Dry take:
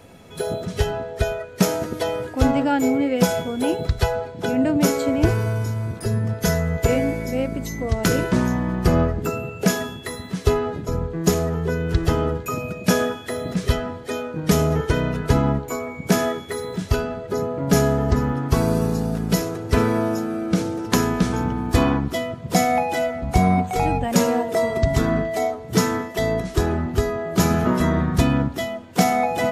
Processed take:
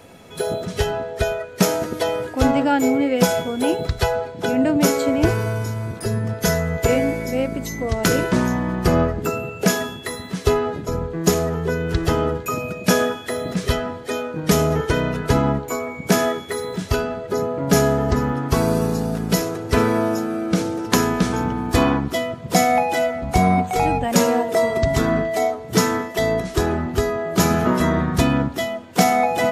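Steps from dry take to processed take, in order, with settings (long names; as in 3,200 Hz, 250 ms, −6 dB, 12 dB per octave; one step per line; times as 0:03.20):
low-shelf EQ 180 Hz −6 dB
level +3 dB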